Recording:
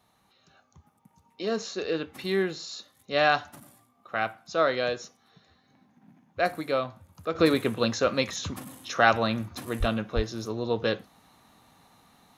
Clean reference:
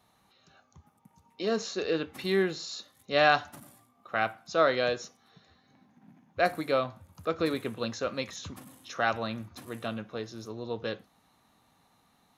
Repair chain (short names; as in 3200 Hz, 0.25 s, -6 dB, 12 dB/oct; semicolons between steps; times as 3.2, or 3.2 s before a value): 7.35 gain correction -7.5 dB; 9.79–9.91 HPF 140 Hz 24 dB/oct; 10.15–10.27 HPF 140 Hz 24 dB/oct